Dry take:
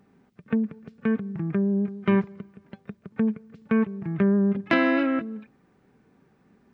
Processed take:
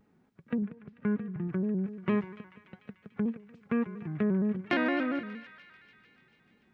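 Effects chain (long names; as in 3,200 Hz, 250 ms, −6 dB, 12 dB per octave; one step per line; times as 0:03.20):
0:00.62–0:01.48: bass and treble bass +3 dB, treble −12 dB
feedback echo with a high-pass in the loop 147 ms, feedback 82%, high-pass 900 Hz, level −13 dB
pitch modulation by a square or saw wave square 4.3 Hz, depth 100 cents
level −7 dB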